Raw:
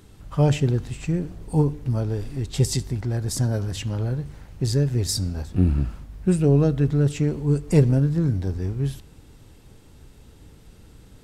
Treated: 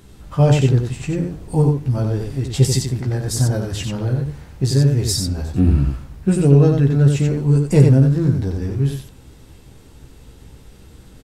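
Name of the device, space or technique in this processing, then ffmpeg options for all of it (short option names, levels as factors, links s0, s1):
slapback doubling: -filter_complex "[0:a]asplit=3[s0][s1][s2];[s1]adelay=15,volume=0.596[s3];[s2]adelay=91,volume=0.631[s4];[s0][s3][s4]amix=inputs=3:normalize=0,volume=1.41"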